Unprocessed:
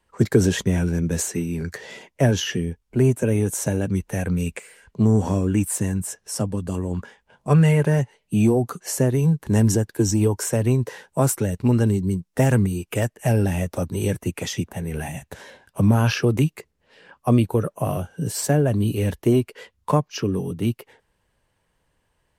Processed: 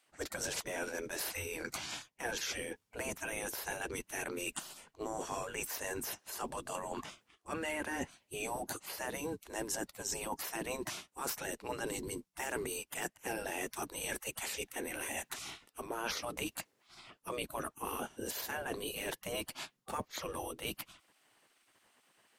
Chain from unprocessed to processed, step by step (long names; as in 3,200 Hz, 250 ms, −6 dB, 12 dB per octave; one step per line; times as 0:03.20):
gate on every frequency bin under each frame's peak −15 dB weak
reversed playback
downward compressor 5 to 1, threshold −43 dBFS, peak gain reduction 17.5 dB
reversed playback
level +6 dB